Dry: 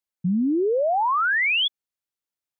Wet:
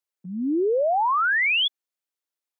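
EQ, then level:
high-pass filter 270 Hz 24 dB per octave
0.0 dB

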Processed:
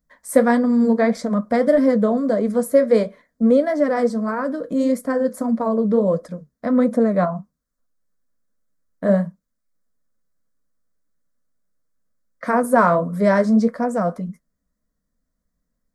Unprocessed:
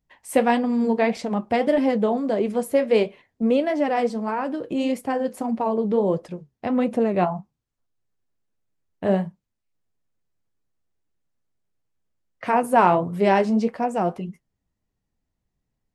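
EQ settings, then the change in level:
phaser with its sweep stopped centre 550 Hz, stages 8
+5.5 dB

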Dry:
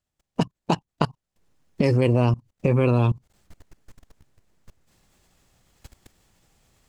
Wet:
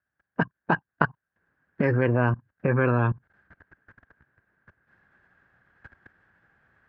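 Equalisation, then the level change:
high-pass filter 74 Hz
low-pass with resonance 1,600 Hz, resonance Q 14
−3.5 dB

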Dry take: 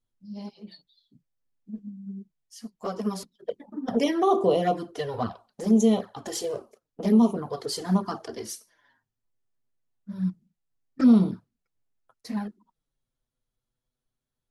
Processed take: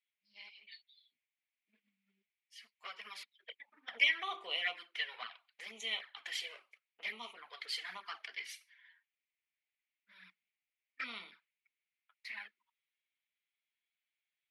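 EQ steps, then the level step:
high-pass with resonance 2,200 Hz, resonance Q 5.4
high shelf with overshoot 4,600 Hz −11 dB, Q 1.5
−4.0 dB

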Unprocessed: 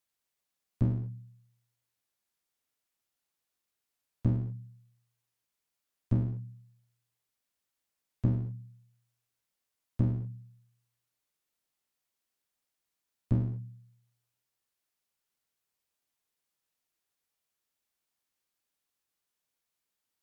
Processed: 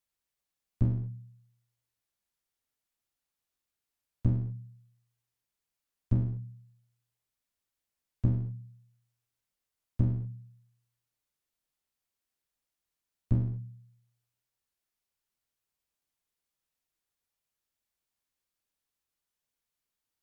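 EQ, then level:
low-shelf EQ 93 Hz +10 dB
−3.0 dB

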